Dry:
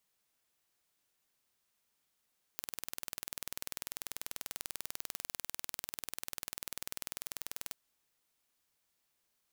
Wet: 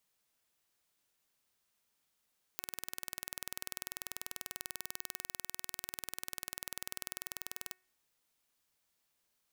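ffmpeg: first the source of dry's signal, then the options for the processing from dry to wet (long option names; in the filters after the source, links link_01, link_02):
-f lavfi -i "aevalsrc='0.266*eq(mod(n,2172),0)':duration=5.13:sample_rate=44100"
-af "bandreject=frequency=369.5:width_type=h:width=4,bandreject=frequency=739:width_type=h:width=4,bandreject=frequency=1108.5:width_type=h:width=4,bandreject=frequency=1478:width_type=h:width=4,bandreject=frequency=1847.5:width_type=h:width=4,bandreject=frequency=2217:width_type=h:width=4,bandreject=frequency=2586.5:width_type=h:width=4"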